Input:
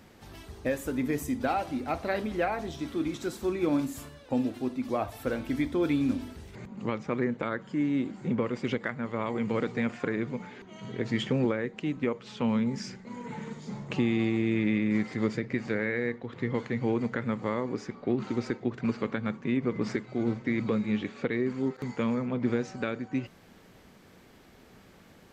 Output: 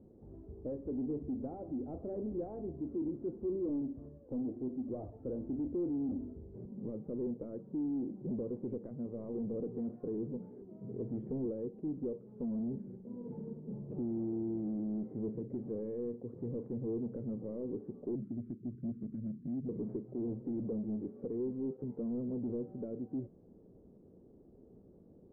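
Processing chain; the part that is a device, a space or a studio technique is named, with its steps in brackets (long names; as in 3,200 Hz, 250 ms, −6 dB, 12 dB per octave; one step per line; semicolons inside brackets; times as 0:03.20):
0:18.15–0:19.69: Chebyshev band-stop filter 220–2,100 Hz, order 2
overdriven synthesiser ladder filter (soft clipping −30.5 dBFS, distortion −8 dB; transistor ladder low-pass 530 Hz, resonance 35%)
level +3 dB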